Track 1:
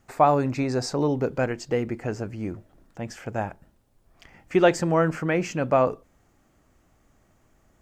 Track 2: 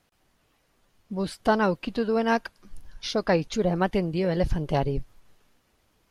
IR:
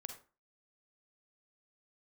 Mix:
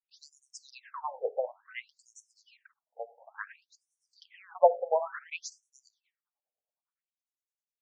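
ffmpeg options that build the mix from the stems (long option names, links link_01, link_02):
-filter_complex "[0:a]aeval=exprs='0.562*(cos(1*acos(clip(val(0)/0.562,-1,1)))-cos(1*PI/2))+0.0141*(cos(7*acos(clip(val(0)/0.562,-1,1)))-cos(7*PI/2))':channel_layout=same,acrossover=split=420[link_01][link_02];[link_01]aeval=exprs='val(0)*(1-1/2+1/2*cos(2*PI*9.8*n/s))':channel_layout=same[link_03];[link_02]aeval=exprs='val(0)*(1-1/2-1/2*cos(2*PI*9.8*n/s))':channel_layout=same[link_04];[link_03][link_04]amix=inputs=2:normalize=0,volume=2dB,asplit=3[link_05][link_06][link_07];[link_06]volume=-7.5dB[link_08];[1:a]adelay=200,volume=-11.5dB[link_09];[link_07]apad=whole_len=277864[link_10];[link_09][link_10]sidechaincompress=threshold=-41dB:ratio=3:attack=27:release=956[link_11];[2:a]atrim=start_sample=2205[link_12];[link_08][link_12]afir=irnorm=-1:irlink=0[link_13];[link_05][link_11][link_13]amix=inputs=3:normalize=0,agate=range=-25dB:threshold=-52dB:ratio=16:detection=peak,afftfilt=real='re*between(b*sr/1024,580*pow(7800/580,0.5+0.5*sin(2*PI*0.57*pts/sr))/1.41,580*pow(7800/580,0.5+0.5*sin(2*PI*0.57*pts/sr))*1.41)':imag='im*between(b*sr/1024,580*pow(7800/580,0.5+0.5*sin(2*PI*0.57*pts/sr))/1.41,580*pow(7800/580,0.5+0.5*sin(2*PI*0.57*pts/sr))*1.41)':win_size=1024:overlap=0.75"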